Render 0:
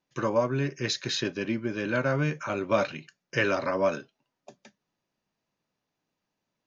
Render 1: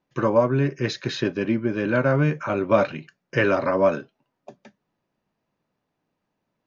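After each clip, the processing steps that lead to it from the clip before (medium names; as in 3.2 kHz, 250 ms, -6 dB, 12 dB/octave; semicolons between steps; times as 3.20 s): low-pass 1.5 kHz 6 dB/octave; trim +7 dB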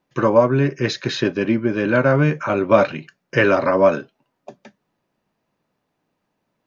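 bass shelf 170 Hz -3 dB; trim +5 dB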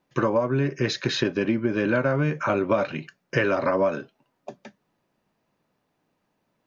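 compression 6:1, threshold -19 dBFS, peak gain reduction 11.5 dB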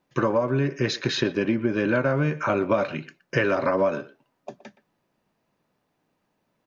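speakerphone echo 120 ms, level -17 dB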